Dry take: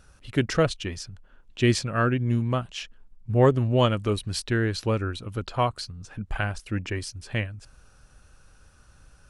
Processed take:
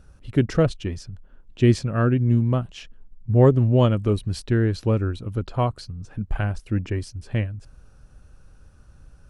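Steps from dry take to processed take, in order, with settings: tilt shelf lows +6 dB, about 700 Hz

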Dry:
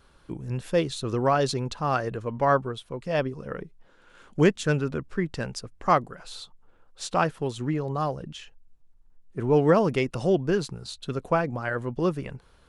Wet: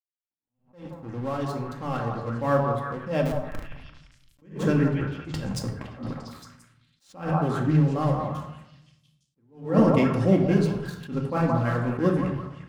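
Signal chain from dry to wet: fade-in on the opening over 3.46 s; high-pass 62 Hz 12 dB/octave; bass shelf 400 Hz +11 dB; crossover distortion -39 dBFS; flange 0.3 Hz, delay 8.2 ms, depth 9.9 ms, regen -52%; 3.25–4.42 s: Schmitt trigger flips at -26.5 dBFS; 4.94–6.12 s: compressor with a negative ratio -33 dBFS, ratio -0.5; repeats whose band climbs or falls 172 ms, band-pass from 890 Hz, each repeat 0.7 oct, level -2 dB; simulated room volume 1900 m³, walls furnished, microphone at 2.2 m; attacks held to a fixed rise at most 150 dB/s

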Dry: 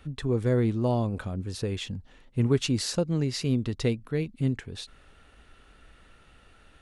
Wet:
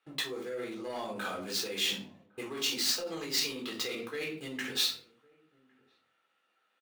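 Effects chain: median filter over 5 samples; high-pass 300 Hz 12 dB/octave; gate -48 dBFS, range -19 dB; waveshaping leveller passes 1; hum notches 60/120/180/240/300/360/420 Hz; simulated room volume 370 m³, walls furnished, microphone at 3.9 m; reverse; compression 8:1, threshold -26 dBFS, peak gain reduction 16 dB; reverse; treble shelf 7.5 kHz -8 dB; peak limiter -25.5 dBFS, peak gain reduction 7 dB; tilt EQ +4.5 dB/octave; echo from a far wall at 190 m, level -26 dB; tape noise reduction on one side only decoder only

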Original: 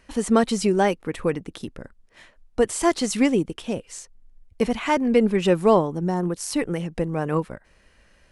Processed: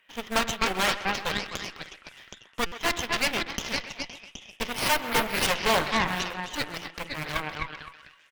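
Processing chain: differentiator; in parallel at -1.5 dB: peak limiter -25 dBFS, peak gain reduction 10 dB; on the sum: resampled via 8 kHz; short-mantissa float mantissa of 2-bit; repeats whose band climbs or falls 257 ms, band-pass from 1.1 kHz, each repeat 0.7 oct, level 0 dB; on a send at -9 dB: reverberation RT60 0.30 s, pre-delay 4 ms; on the sum: Chebyshev shaper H 7 -29 dB, 8 -9 dB, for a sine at -18 dBFS; 4.72–5.47 s: careless resampling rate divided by 3×, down none, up hold; speakerphone echo 130 ms, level -12 dB; buffer glitch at 2.66 s, samples 256, times 9; trim +5.5 dB

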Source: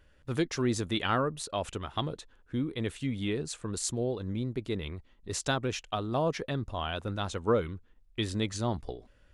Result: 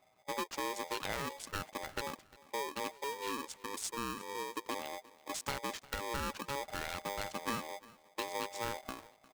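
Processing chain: local Wiener filter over 15 samples; high-pass 49 Hz 24 dB/octave, from 3.04 s 200 Hz, from 4.69 s 48 Hz; compression, threshold -30 dBFS, peak gain reduction 9 dB; feedback delay 353 ms, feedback 37%, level -21 dB; polarity switched at an audio rate 700 Hz; trim -4 dB

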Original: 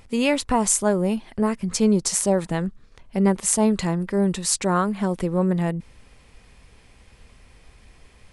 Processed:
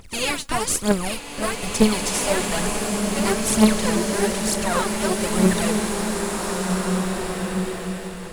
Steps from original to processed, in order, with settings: spectral contrast reduction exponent 0.53; phaser 1.1 Hz, delay 3.7 ms, feedback 79%; in parallel at -11 dB: decimation with a swept rate 40×, swing 60% 0.36 Hz; on the sum: swelling reverb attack 2130 ms, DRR 0.5 dB; trim -7 dB

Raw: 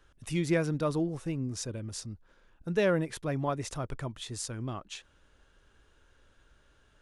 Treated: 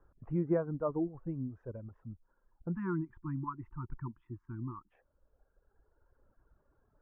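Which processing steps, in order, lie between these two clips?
inverse Chebyshev low-pass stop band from 4 kHz, stop band 60 dB; spectral selection erased 2.75–4.92 s, 370–870 Hz; reverb removal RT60 2 s; trim -1.5 dB

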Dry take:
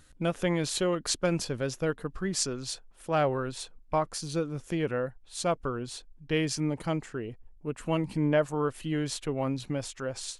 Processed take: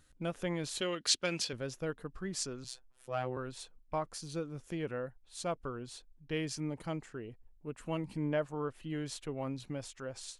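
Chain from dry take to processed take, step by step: 0.81–1.53 s: frequency weighting D; 2.64–3.37 s: robot voice 127 Hz; 8.43–8.90 s: treble shelf 4.7 kHz -10 dB; trim -8 dB

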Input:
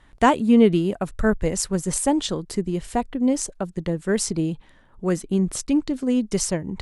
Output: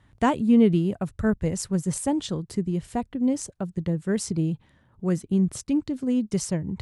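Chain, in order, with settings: high-pass 50 Hz; peaking EQ 110 Hz +12.5 dB 1.8 oct; trim -7 dB

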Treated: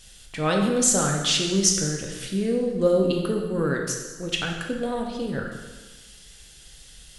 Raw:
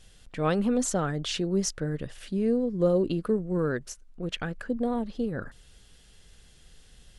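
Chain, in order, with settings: treble shelf 2.2 kHz +11.5 dB; plate-style reverb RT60 1.3 s, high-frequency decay 0.9×, DRR 0.5 dB

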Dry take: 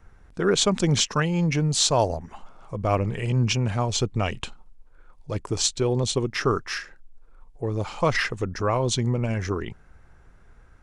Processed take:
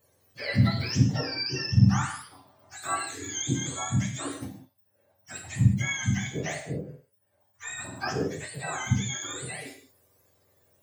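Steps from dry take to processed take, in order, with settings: spectrum inverted on a logarithmic axis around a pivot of 900 Hz; gated-style reverb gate 220 ms falling, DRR 0.5 dB; trim -8 dB

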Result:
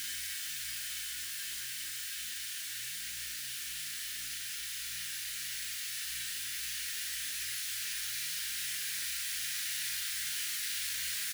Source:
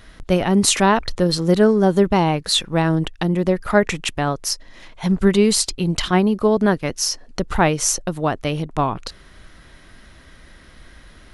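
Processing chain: formants flattened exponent 0.1; elliptic high-pass 1.6 kHz, stop band 70 dB; compression 3:1, threshold -39 dBFS, peak gain reduction 19.5 dB; hum 60 Hz, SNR 25 dB; Paulstretch 49×, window 0.50 s, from 3.05 s; crackle 55 per s -48 dBFS; doubling 40 ms -7 dB

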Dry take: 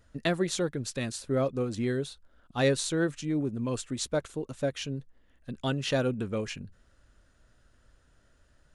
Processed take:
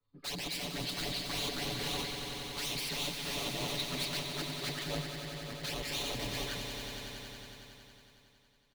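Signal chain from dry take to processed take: frequency axis rescaled in octaves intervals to 80%; band-stop 2.6 kHz, Q 16; integer overflow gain 30 dB; touch-sensitive flanger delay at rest 11.7 ms, full sweep at -32 dBFS; peaking EQ 4.1 kHz +10.5 dB 0.5 oct; comb 7 ms; echo with a slow build-up 92 ms, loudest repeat 5, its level -9 dB; three bands expanded up and down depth 40%; trim -4 dB

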